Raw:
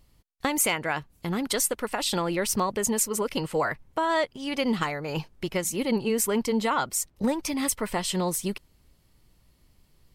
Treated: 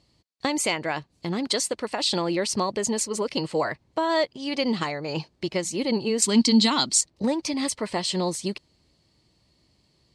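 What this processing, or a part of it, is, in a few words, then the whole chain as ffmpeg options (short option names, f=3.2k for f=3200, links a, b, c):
car door speaker: -filter_complex "[0:a]asettb=1/sr,asplit=3[a][b][c];[a]atrim=end=6.224[d];[b]atrim=start=6.22:end=7.01,asetpts=PTS-STARTPTS,afade=t=in:d=0.004:c=qsin,afade=t=out:st=0.786:d=0.004:c=qsin,equalizer=f=250:t=o:w=1:g=11,equalizer=f=500:t=o:w=1:g=-8,equalizer=f=4k:t=o:w=1:g=11,equalizer=f=8k:t=o:w=1:g=8[e];[c]atrim=start=7.006[f];[d][e]acrossfade=d=0.004:c1=hsin:c2=qsin[g];[g][f]acrossfade=d=0.004:c1=qsin:c2=hsin,highpass=84,equalizer=f=330:t=q:w=4:g=4,equalizer=f=620:t=q:w=4:g=3,equalizer=f=1.4k:t=q:w=4:g=-5,equalizer=f=4.4k:t=q:w=4:g=9,lowpass=f=8.4k:w=0.5412,lowpass=f=8.4k:w=1.3066"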